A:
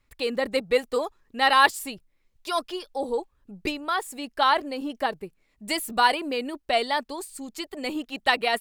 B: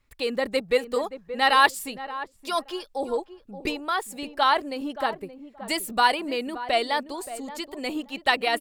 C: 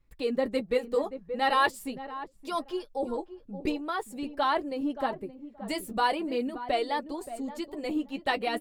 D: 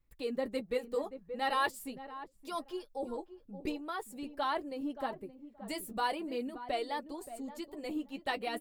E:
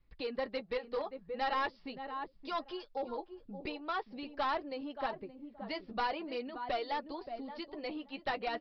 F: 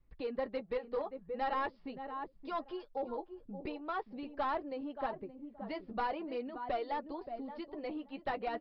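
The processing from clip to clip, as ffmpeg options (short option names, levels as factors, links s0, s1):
-filter_complex "[0:a]asplit=2[s0][s1];[s1]adelay=575,lowpass=f=1000:p=1,volume=0.266,asplit=2[s2][s3];[s3]adelay=575,lowpass=f=1000:p=1,volume=0.21,asplit=2[s4][s5];[s5]adelay=575,lowpass=f=1000:p=1,volume=0.21[s6];[s0][s2][s4][s6]amix=inputs=4:normalize=0"
-af "tiltshelf=f=670:g=6,flanger=delay=5.7:depth=5.4:regen=-32:speed=0.43:shape=triangular"
-af "highshelf=f=10000:g=9,volume=0.447"
-filter_complex "[0:a]acrossover=split=590|1800[s0][s1][s2];[s0]acompressor=threshold=0.00355:ratio=4[s3];[s1]acompressor=threshold=0.0178:ratio=4[s4];[s2]acompressor=threshold=0.00447:ratio=4[s5];[s3][s4][s5]amix=inputs=3:normalize=0,aresample=11025,aeval=exprs='clip(val(0),-1,0.0158)':c=same,aresample=44100,volume=1.68"
-af "lowpass=f=1200:p=1,volume=1.12"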